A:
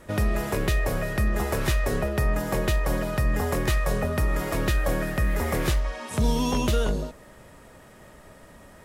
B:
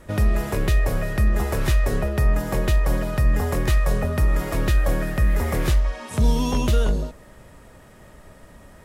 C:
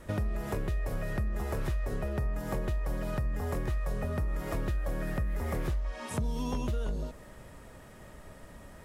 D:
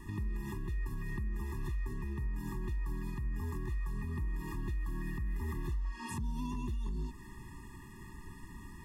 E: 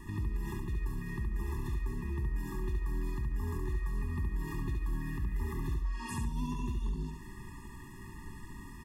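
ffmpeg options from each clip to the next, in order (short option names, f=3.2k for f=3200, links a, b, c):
-af "lowshelf=f=120:g=7"
-filter_complex "[0:a]acrossover=split=1600[a][b];[b]alimiter=level_in=5.5dB:limit=-24dB:level=0:latency=1:release=226,volume=-5.5dB[c];[a][c]amix=inputs=2:normalize=0,acompressor=threshold=-26dB:ratio=6,volume=-3dB"
-af "alimiter=level_in=7dB:limit=-24dB:level=0:latency=1:release=247,volume=-7dB,afftfilt=real='re*eq(mod(floor(b*sr/1024/410),2),0)':imag='im*eq(mod(floor(b*sr/1024/410),2),0)':win_size=1024:overlap=0.75,volume=2dB"
-af "aecho=1:1:70|140|210|280:0.596|0.167|0.0467|0.0131,volume=1dB"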